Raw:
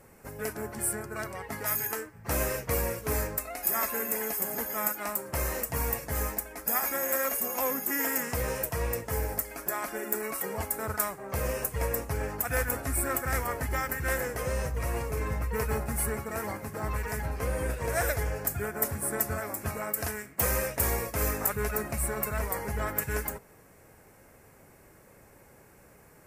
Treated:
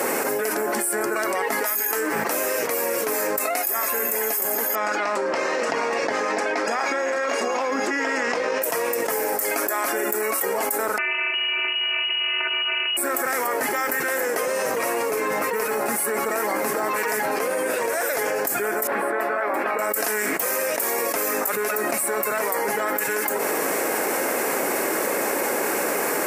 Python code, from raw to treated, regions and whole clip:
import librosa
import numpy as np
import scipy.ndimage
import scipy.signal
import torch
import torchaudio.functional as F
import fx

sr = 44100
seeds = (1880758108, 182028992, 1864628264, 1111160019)

y = fx.chain(x, sr, fx.lowpass(hz=5200.0, slope=24),
    fx.over_compress(threshold_db=-37.0, ratio=-1.0),
    fx.echo_single(ms=777, db=-15.5), at=(4.75, 8.62))
y = fx.chain(y, sr, fx.halfwave_hold(),
    fx.robotise(hz=281.0),
    fx.freq_invert(carrier_hz=2900), at=(10.98, 12.97))
y = fx.chain(y, sr, fx.highpass(hz=690.0, slope=6),
    fx.air_absorb(metres=490.0), at=(18.87, 19.79))
y = scipy.signal.sosfilt(scipy.signal.butter(4, 280.0, 'highpass', fs=sr, output='sos'), y)
y = fx.env_flatten(y, sr, amount_pct=100)
y = y * 10.0 ** (-3.0 / 20.0)